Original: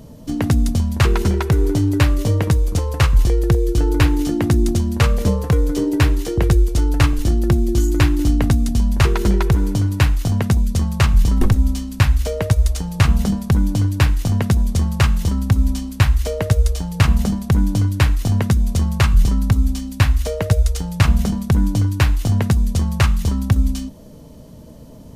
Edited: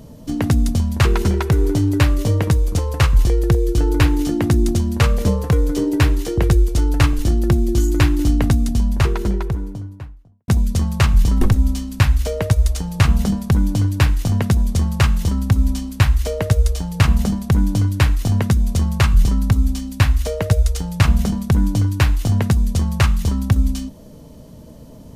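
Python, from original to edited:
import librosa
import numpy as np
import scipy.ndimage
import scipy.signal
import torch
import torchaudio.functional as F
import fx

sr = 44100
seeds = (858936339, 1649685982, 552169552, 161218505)

y = fx.studio_fade_out(x, sr, start_s=8.49, length_s=1.99)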